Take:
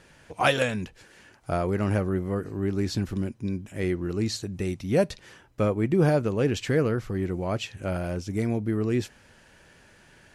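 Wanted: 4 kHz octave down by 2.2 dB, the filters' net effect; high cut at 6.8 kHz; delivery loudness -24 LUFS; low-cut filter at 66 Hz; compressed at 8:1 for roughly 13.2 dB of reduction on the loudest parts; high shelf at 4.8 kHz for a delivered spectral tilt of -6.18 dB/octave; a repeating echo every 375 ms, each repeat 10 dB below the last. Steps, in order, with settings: high-pass 66 Hz; low-pass 6.8 kHz; peaking EQ 4 kHz -5.5 dB; treble shelf 4.8 kHz +6.5 dB; compression 8:1, threshold -31 dBFS; feedback delay 375 ms, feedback 32%, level -10 dB; trim +12.5 dB

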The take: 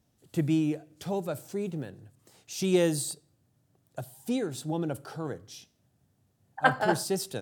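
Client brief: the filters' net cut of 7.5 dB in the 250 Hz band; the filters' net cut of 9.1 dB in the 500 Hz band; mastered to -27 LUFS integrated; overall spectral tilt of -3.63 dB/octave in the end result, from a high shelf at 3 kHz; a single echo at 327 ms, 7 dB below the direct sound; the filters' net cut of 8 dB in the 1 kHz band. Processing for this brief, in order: peaking EQ 250 Hz -8 dB; peaking EQ 500 Hz -7.5 dB; peaking EQ 1 kHz -8 dB; treble shelf 3 kHz +5.5 dB; delay 327 ms -7 dB; trim +6.5 dB

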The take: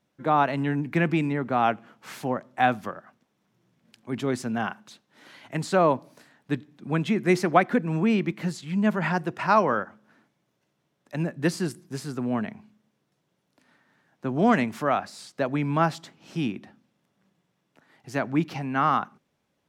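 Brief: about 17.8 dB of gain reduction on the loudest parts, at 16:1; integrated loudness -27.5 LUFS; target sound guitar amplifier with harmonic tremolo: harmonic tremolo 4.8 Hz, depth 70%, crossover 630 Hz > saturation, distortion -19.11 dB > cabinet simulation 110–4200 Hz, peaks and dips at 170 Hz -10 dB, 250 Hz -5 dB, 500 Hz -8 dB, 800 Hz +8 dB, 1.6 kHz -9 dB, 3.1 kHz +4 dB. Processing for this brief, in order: compression 16:1, threshold -31 dBFS; harmonic tremolo 4.8 Hz, depth 70%, crossover 630 Hz; saturation -29 dBFS; cabinet simulation 110–4200 Hz, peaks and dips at 170 Hz -10 dB, 250 Hz -5 dB, 500 Hz -8 dB, 800 Hz +8 dB, 1.6 kHz -9 dB, 3.1 kHz +4 dB; trim +16 dB

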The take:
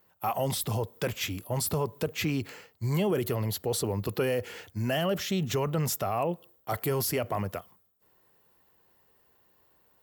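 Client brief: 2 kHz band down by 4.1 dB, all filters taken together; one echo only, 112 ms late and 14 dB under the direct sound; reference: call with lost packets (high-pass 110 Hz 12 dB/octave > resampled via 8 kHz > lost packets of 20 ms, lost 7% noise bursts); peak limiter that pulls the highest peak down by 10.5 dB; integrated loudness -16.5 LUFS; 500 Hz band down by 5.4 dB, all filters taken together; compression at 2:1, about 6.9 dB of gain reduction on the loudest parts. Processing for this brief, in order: peaking EQ 500 Hz -6.5 dB; peaking EQ 2 kHz -5 dB; compression 2:1, threshold -39 dBFS; peak limiter -34.5 dBFS; high-pass 110 Hz 12 dB/octave; delay 112 ms -14 dB; resampled via 8 kHz; lost packets of 20 ms, lost 7% noise bursts; trim +29 dB

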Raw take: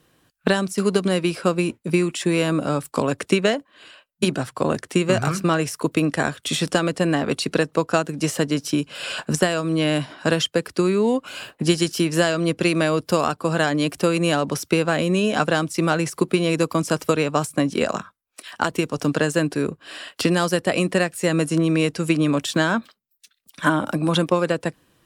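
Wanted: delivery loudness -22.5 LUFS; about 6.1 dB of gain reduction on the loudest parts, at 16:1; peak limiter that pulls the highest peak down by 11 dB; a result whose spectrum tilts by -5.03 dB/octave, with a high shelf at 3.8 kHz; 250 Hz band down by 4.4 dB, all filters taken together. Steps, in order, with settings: peaking EQ 250 Hz -7 dB; treble shelf 3.8 kHz -8 dB; compression 16:1, threshold -22 dBFS; trim +9 dB; peak limiter -10.5 dBFS

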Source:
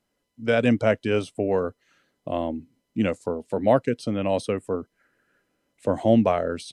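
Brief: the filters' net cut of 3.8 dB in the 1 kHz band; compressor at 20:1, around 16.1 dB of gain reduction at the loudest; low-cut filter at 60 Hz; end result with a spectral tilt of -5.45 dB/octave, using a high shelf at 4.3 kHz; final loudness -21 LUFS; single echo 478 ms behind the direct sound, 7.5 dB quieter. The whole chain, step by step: high-pass 60 Hz; peaking EQ 1 kHz -6.5 dB; treble shelf 4.3 kHz +6 dB; compression 20:1, threshold -30 dBFS; delay 478 ms -7.5 dB; trim +15.5 dB

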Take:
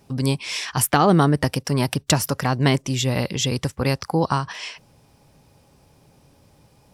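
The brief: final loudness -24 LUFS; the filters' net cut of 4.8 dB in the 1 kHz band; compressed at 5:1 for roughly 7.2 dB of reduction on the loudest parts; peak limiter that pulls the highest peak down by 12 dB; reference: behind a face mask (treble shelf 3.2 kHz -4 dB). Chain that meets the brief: peaking EQ 1 kHz -6 dB; compression 5:1, threshold -21 dBFS; peak limiter -19 dBFS; treble shelf 3.2 kHz -4 dB; trim +6 dB

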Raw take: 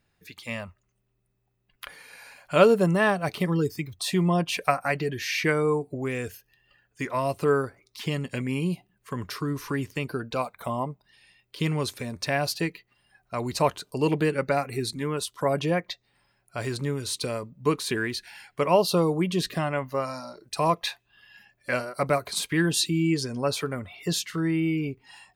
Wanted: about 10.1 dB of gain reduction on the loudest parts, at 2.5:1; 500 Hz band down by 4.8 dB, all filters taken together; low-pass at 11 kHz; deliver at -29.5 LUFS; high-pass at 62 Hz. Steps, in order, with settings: high-pass 62 Hz; low-pass 11 kHz; peaking EQ 500 Hz -6 dB; compression 2.5:1, threshold -32 dBFS; trim +5 dB

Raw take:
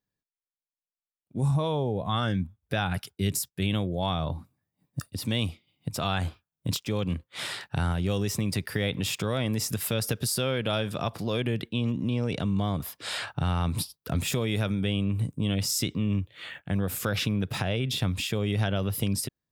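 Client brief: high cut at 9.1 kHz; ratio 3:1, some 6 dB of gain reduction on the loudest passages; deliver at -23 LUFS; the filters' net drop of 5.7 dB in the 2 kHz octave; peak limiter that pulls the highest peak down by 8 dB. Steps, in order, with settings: low-pass 9.1 kHz; peaking EQ 2 kHz -8 dB; compression 3:1, threshold -31 dBFS; trim +13.5 dB; peak limiter -12.5 dBFS

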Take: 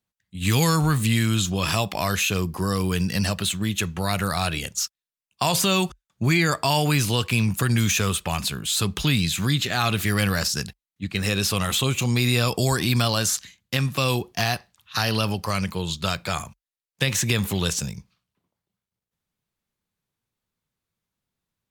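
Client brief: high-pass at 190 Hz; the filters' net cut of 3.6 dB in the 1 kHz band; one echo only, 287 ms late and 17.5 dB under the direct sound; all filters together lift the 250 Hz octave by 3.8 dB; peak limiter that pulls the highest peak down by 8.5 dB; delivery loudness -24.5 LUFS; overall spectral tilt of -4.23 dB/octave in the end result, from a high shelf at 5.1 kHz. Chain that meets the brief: high-pass 190 Hz; peaking EQ 250 Hz +8 dB; peaking EQ 1 kHz -5 dB; treble shelf 5.1 kHz -5.5 dB; peak limiter -16.5 dBFS; delay 287 ms -17.5 dB; trim +2.5 dB

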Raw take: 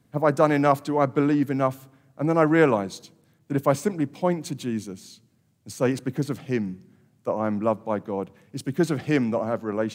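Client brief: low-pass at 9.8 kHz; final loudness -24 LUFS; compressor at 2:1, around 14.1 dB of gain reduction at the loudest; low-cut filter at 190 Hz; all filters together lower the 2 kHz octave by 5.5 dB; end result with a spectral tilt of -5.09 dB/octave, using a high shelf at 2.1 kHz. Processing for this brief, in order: high-pass 190 Hz; low-pass 9.8 kHz; peaking EQ 2 kHz -4.5 dB; treble shelf 2.1 kHz -5.5 dB; compression 2:1, threshold -42 dBFS; trim +14 dB

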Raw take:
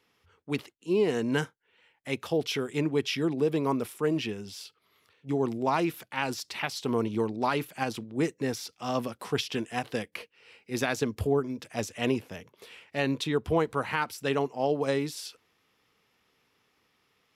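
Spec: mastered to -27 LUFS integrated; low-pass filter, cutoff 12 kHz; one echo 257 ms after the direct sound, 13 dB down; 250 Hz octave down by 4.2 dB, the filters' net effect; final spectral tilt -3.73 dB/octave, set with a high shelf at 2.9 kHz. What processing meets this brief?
low-pass 12 kHz; peaking EQ 250 Hz -5.5 dB; treble shelf 2.9 kHz +7 dB; delay 257 ms -13 dB; trim +3.5 dB

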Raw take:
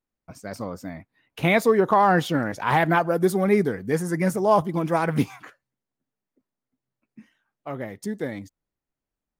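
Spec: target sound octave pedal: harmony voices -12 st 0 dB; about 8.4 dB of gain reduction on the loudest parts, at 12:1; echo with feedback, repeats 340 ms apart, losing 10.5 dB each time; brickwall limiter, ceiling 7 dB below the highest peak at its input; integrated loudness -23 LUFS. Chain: compression 12:1, threshold -22 dBFS; peak limiter -19 dBFS; feedback delay 340 ms, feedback 30%, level -10.5 dB; harmony voices -12 st 0 dB; trim +5 dB

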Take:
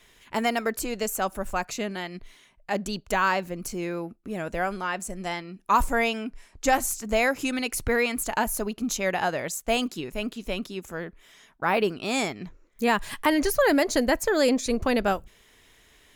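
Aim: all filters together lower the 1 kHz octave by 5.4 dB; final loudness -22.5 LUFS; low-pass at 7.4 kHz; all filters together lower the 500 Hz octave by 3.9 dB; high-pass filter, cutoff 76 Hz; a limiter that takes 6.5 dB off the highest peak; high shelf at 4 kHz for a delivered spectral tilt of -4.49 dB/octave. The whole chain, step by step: high-pass 76 Hz; low-pass 7.4 kHz; peaking EQ 500 Hz -3 dB; peaking EQ 1 kHz -5.5 dB; treble shelf 4 kHz -8 dB; trim +9.5 dB; peak limiter -10 dBFS

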